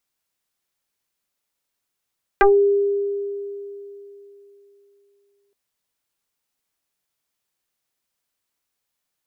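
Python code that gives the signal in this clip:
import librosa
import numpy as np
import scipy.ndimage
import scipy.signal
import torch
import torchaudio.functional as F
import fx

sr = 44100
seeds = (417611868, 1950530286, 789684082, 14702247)

y = fx.fm2(sr, length_s=3.12, level_db=-9.0, carrier_hz=402.0, ratio=0.99, index=4.5, index_s=0.19, decay_s=3.32, shape='exponential')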